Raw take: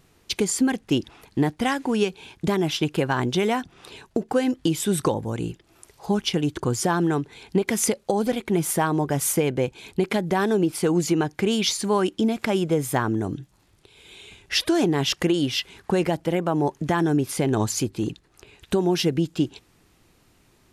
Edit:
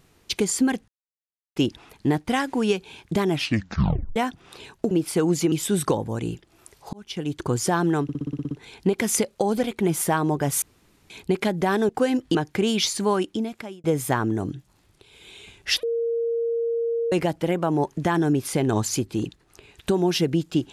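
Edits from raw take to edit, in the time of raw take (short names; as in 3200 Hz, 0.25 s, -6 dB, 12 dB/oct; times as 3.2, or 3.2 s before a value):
0.88 insert silence 0.68 s
2.65 tape stop 0.83 s
4.23–4.69 swap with 10.58–11.19
6.1–6.66 fade in linear
7.2 stutter 0.06 s, 9 plays
9.31–9.79 room tone
11.91–12.68 fade out
14.67–15.96 bleep 464 Hz -21.5 dBFS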